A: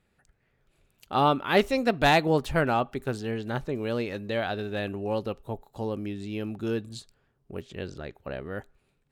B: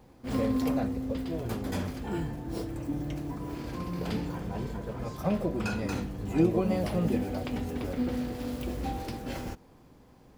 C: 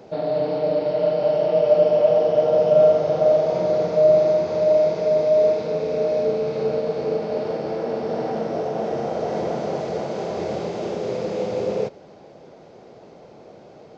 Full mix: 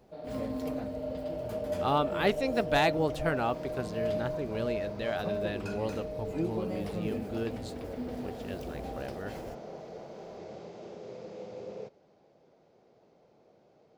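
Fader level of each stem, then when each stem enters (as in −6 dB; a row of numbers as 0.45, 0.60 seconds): −5.5, −8.5, −18.0 decibels; 0.70, 0.00, 0.00 seconds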